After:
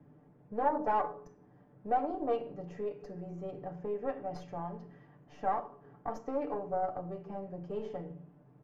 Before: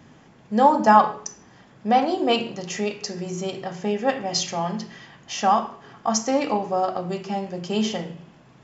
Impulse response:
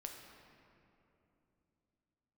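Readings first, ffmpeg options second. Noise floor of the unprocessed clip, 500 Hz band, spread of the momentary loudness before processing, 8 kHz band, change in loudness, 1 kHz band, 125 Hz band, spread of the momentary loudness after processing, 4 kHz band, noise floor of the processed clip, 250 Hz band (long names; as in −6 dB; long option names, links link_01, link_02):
−52 dBFS, −11.0 dB, 15 LU, can't be measured, −13.5 dB, −13.5 dB, −12.0 dB, 13 LU, below −30 dB, −61 dBFS, −16.0 dB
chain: -filter_complex "[0:a]aeval=exprs='(tanh(4.47*val(0)+0.7)-tanh(0.7))/4.47':channel_layout=same,bass=frequency=250:gain=-1,treble=frequency=4000:gain=-11,aecho=1:1:6.8:0.63,acrossover=split=360|640[link_01][link_02][link_03];[link_01]acompressor=threshold=-37dB:ratio=6[link_04];[link_04][link_02][link_03]amix=inputs=3:normalize=0,firequalizer=gain_entry='entry(460,0);entry(1000,-8);entry(3100,-22)':delay=0.05:min_phase=1,volume=-5dB"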